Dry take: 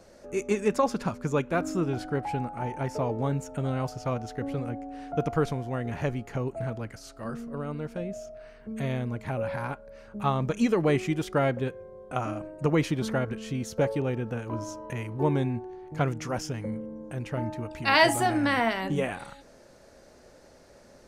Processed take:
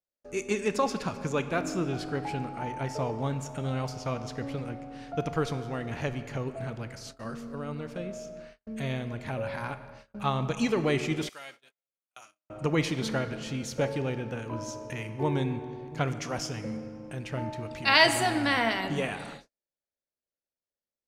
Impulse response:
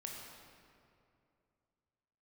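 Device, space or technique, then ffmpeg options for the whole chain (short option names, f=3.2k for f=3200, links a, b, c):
keyed gated reverb: -filter_complex "[0:a]asplit=3[a][b][c];[1:a]atrim=start_sample=2205[d];[b][d]afir=irnorm=-1:irlink=0[e];[c]apad=whole_len=929388[f];[e][f]sidechaingate=range=-33dB:threshold=-46dB:ratio=16:detection=peak,volume=-3dB[g];[a][g]amix=inputs=2:normalize=0,asettb=1/sr,asplit=3[h][i][j];[h]atrim=end=11.294[k];[i]atrim=start=11.29:end=12.5,asetpts=PTS-STARTPTS,afade=t=in:d=0.004:c=qsin,afade=t=out:st=1.206:d=0.004:c=qsin,aderivative[l];[j]atrim=start=12.496[m];[k][l]acrossfade=d=0.004:c1=hsin:c2=qsin[n];[n][m]acrossfade=d=0.004:c1=qsin:c2=hsin,agate=range=-42dB:threshold=-45dB:ratio=16:detection=peak,equalizer=f=4k:t=o:w=2.1:g=7.5,volume=-6dB"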